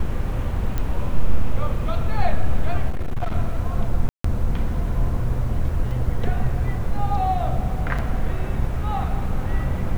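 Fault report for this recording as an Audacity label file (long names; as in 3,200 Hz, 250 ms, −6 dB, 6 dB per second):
0.780000	0.780000	click −12 dBFS
2.890000	3.360000	clipping −19 dBFS
4.090000	4.240000	drop-out 154 ms
5.910000	5.910000	drop-out 3.6 ms
7.980000	7.990000	drop-out 6.1 ms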